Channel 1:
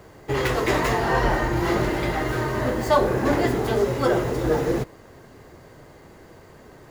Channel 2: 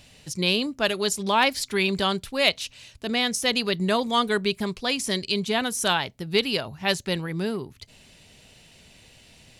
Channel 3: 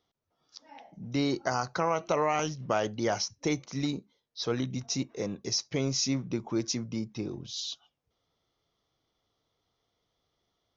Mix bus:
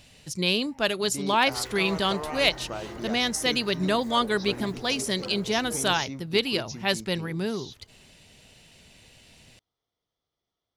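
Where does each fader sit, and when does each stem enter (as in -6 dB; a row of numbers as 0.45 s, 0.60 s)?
-19.0 dB, -1.5 dB, -8.0 dB; 1.20 s, 0.00 s, 0.00 s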